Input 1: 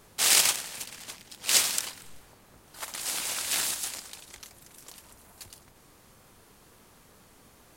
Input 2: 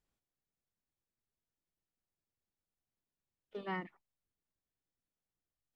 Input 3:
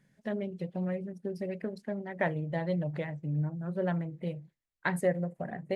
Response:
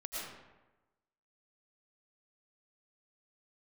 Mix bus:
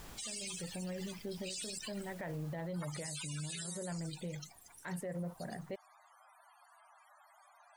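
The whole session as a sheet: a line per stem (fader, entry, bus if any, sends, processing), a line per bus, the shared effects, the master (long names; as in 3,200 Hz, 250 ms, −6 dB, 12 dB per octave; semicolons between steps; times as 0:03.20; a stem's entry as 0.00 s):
+1.5 dB, 0.00 s, bus A, no send, Butterworth high-pass 620 Hz 48 dB per octave; spectral peaks only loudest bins 32
0:02.37 −4 dB → 0:02.87 −14.5 dB, 0.00 s, no bus, no send, brickwall limiter −31.5 dBFS, peak gain reduction 5 dB; envelope flattener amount 100%
−3.0 dB, 0.00 s, bus A, no send, no processing
bus A: 0.0 dB, floating-point word with a short mantissa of 6 bits; brickwall limiter −24.5 dBFS, peak gain reduction 10.5 dB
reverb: not used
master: brickwall limiter −33.5 dBFS, peak gain reduction 9.5 dB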